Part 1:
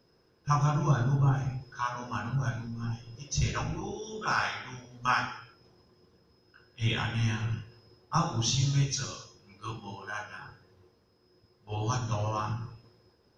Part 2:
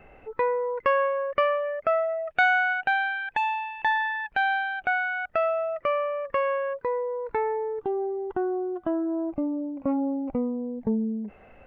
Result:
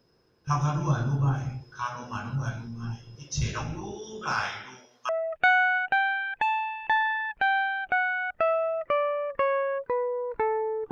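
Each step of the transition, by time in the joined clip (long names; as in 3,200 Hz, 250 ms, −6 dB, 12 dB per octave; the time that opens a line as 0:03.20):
part 1
0:04.64–0:05.09: high-pass filter 190 Hz → 1,000 Hz
0:05.09: continue with part 2 from 0:02.04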